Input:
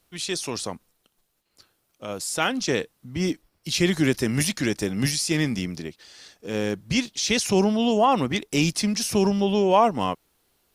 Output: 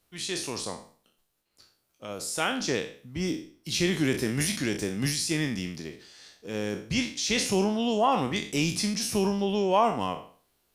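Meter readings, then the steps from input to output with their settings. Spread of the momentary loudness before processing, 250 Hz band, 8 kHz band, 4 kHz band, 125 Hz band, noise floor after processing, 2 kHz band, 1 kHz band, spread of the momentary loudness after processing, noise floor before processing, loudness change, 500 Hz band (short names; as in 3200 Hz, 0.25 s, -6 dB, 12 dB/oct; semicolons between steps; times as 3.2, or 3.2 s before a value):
14 LU, -5.0 dB, -3.0 dB, -3.0 dB, -4.5 dB, -73 dBFS, -3.5 dB, -4.0 dB, 13 LU, -72 dBFS, -4.0 dB, -4.5 dB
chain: spectral trails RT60 0.45 s; gain -5.5 dB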